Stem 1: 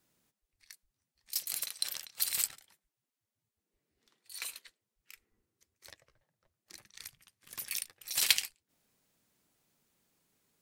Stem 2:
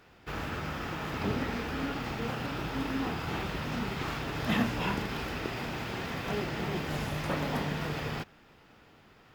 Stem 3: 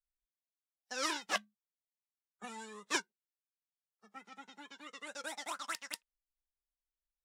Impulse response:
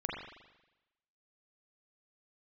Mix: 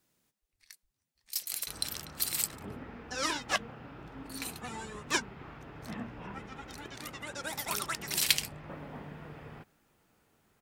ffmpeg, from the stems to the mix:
-filter_complex "[0:a]volume=1[s0];[1:a]acrossover=split=3000[s1][s2];[s2]acompressor=threshold=0.002:ratio=4:attack=1:release=60[s3];[s1][s3]amix=inputs=2:normalize=0,highshelf=f=3600:g=-10,adelay=1400,volume=0.251[s4];[2:a]dynaudnorm=f=180:g=9:m=2.24,adelay=2200,volume=0.708[s5];[s0][s4][s5]amix=inputs=3:normalize=0"

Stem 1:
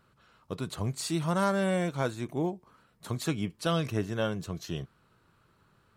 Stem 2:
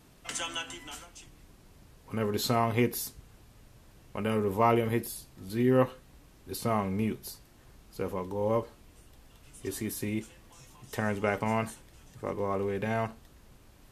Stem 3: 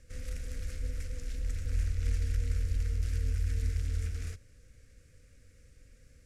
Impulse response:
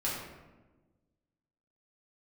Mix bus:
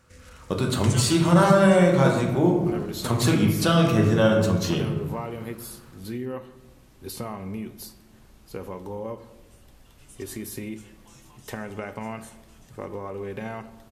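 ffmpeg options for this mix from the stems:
-filter_complex "[0:a]dynaudnorm=f=210:g=3:m=3.16,volume=0.944,asplit=2[s0][s1];[s1]volume=0.447[s2];[1:a]acompressor=threshold=0.0251:ratio=6,adelay=550,volume=1.06,asplit=2[s3][s4];[s4]volume=0.168[s5];[2:a]acompressor=threshold=0.0158:ratio=6,volume=1[s6];[s0][s6]amix=inputs=2:normalize=0,highpass=84,acompressor=threshold=0.0501:ratio=6,volume=1[s7];[3:a]atrim=start_sample=2205[s8];[s2][s5]amix=inputs=2:normalize=0[s9];[s9][s8]afir=irnorm=-1:irlink=0[s10];[s3][s7][s10]amix=inputs=3:normalize=0"

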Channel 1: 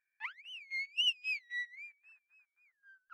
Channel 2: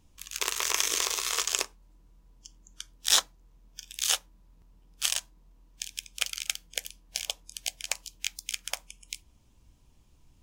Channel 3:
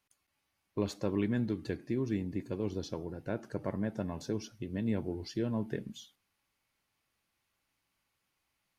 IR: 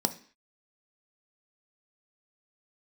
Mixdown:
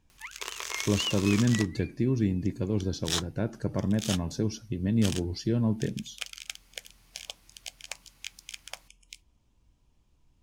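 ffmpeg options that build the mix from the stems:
-filter_complex "[0:a]volume=0.944[s0];[1:a]volume=0.531[s1];[2:a]bass=f=250:g=8,treble=f=4000:g=10,acompressor=mode=upward:threshold=0.00282:ratio=2.5,adelay=100,volume=1.33[s2];[s0][s1][s2]amix=inputs=3:normalize=0,highshelf=f=7400:g=-8.5"

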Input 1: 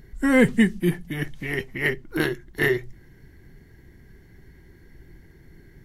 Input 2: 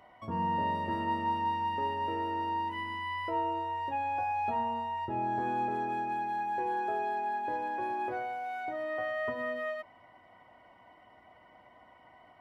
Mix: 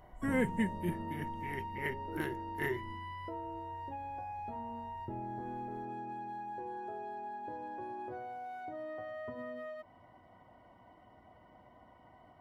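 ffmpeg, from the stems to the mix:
-filter_complex "[0:a]equalizer=f=4400:w=2.4:g=-13.5,volume=0.2[s0];[1:a]equalizer=f=2300:w=1.8:g=-6,acompressor=threshold=0.00891:ratio=3,lowshelf=f=360:g=10.5,volume=0.631[s1];[s0][s1]amix=inputs=2:normalize=0"

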